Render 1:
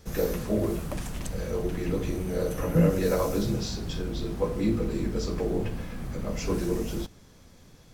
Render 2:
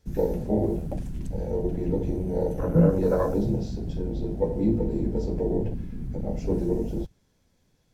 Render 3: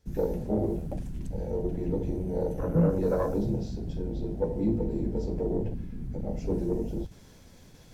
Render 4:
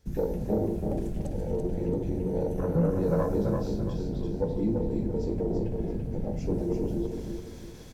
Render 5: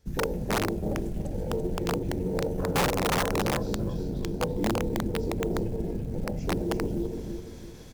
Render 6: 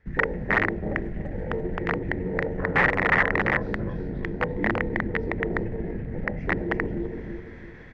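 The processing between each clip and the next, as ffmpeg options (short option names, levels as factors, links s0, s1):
-af "afwtdn=0.0282,bandreject=f=1200:w=8.3,volume=1.33"
-af "areverse,acompressor=mode=upward:threshold=0.0224:ratio=2.5,areverse,asoftclip=type=tanh:threshold=0.299,volume=0.708"
-filter_complex "[0:a]asplit=2[s0][s1];[s1]acompressor=threshold=0.02:ratio=6,volume=1.41[s2];[s0][s2]amix=inputs=2:normalize=0,aecho=1:1:336|672|1008|1344|1680:0.596|0.214|0.0772|0.0278|0.01,volume=0.631"
-af "aeval=exprs='(mod(9.44*val(0)+1,2)-1)/9.44':c=same,acrusher=bits=8:mode=log:mix=0:aa=0.000001"
-af "lowpass=f=1900:t=q:w=8.5"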